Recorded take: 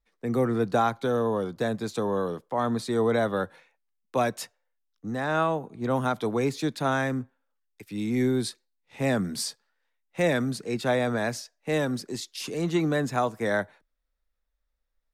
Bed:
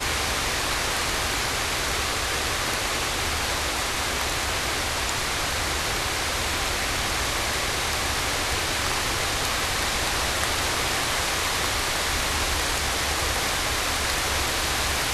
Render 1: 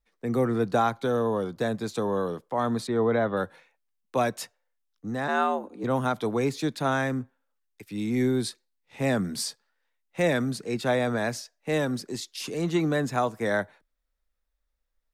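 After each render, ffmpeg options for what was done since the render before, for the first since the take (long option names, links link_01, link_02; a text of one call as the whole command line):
ffmpeg -i in.wav -filter_complex "[0:a]asettb=1/sr,asplit=3[link_01][link_02][link_03];[link_01]atrim=end=2.874[link_04];[link_02]atrim=start=2.87:end=3.37,asetpts=PTS-STARTPTS,afade=type=in:duration=0.004:curve=qsin,afade=type=out:start_time=0.496:duration=0.004:curve=qsin,lowpass=2700[link_05];[link_03]atrim=start=3.366[link_06];[link_04][link_05]acrossfade=duration=0.004:curve1=hsin:curve2=qsin[link_07];[link_07][link_06]acrossfade=duration=0.004:curve1=qsin:curve2=hsin,asplit=3[link_08][link_09][link_10];[link_08]afade=type=out:start_time=5.27:duration=0.02[link_11];[link_09]afreqshift=78,afade=type=in:start_time=5.27:duration=0.02,afade=type=out:start_time=5.83:duration=0.02[link_12];[link_10]afade=type=in:start_time=5.83:duration=0.02[link_13];[link_11][link_12][link_13]amix=inputs=3:normalize=0" out.wav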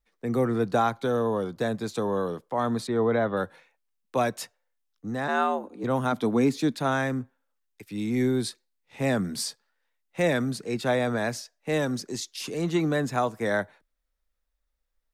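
ffmpeg -i in.wav -filter_complex "[0:a]asettb=1/sr,asplit=3[link_01][link_02][link_03];[link_01]atrim=end=6.124[link_04];[link_02]atrim=start=6.12:end=6.76,asetpts=PTS-STARTPTS,afade=type=in:duration=0.004:curve=qsin,afade=type=out:start_time=0.636:duration=0.004:curve=qsin,equalizer=frequency=250:width_type=o:width=0.5:gain=9[link_05];[link_03]atrim=start=6.756[link_06];[link_04][link_05]acrossfade=duration=0.004:curve1=hsin:curve2=qsin[link_07];[link_07][link_06]acrossfade=duration=0.004:curve1=qsin:curve2=hsin,asettb=1/sr,asplit=3[link_08][link_09][link_10];[link_08]atrim=end=11.824[link_11];[link_09]atrim=start=11.82:end=12.34,asetpts=PTS-STARTPTS,afade=type=in:duration=0.004:curve=qsin,afade=type=out:start_time=0.516:duration=0.004:curve=qsin,equalizer=frequency=6200:width_type=o:width=0.4:gain=6[link_12];[link_10]atrim=start=12.336[link_13];[link_11][link_12]acrossfade=duration=0.004:curve1=hsin:curve2=qsin[link_14];[link_14][link_13]acrossfade=duration=0.004:curve1=qsin:curve2=hsin" out.wav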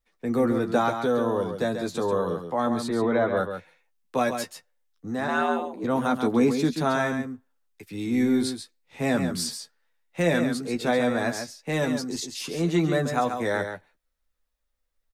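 ffmpeg -i in.wav -filter_complex "[0:a]asplit=2[link_01][link_02];[link_02]adelay=12,volume=-5.5dB[link_03];[link_01][link_03]amix=inputs=2:normalize=0,asplit=2[link_04][link_05];[link_05]aecho=0:1:137:0.422[link_06];[link_04][link_06]amix=inputs=2:normalize=0" out.wav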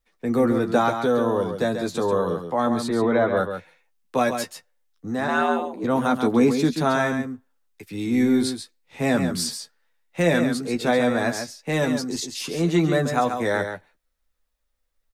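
ffmpeg -i in.wav -af "volume=3dB" out.wav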